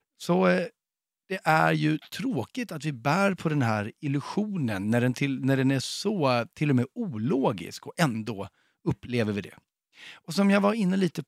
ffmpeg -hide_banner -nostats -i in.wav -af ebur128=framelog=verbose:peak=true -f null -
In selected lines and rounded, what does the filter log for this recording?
Integrated loudness:
  I:         -26.7 LUFS
  Threshold: -37.2 LUFS
Loudness range:
  LRA:         3.6 LU
  Threshold: -47.6 LUFS
  LRA low:   -30.2 LUFS
  LRA high:  -26.6 LUFS
True peak:
  Peak:       -7.8 dBFS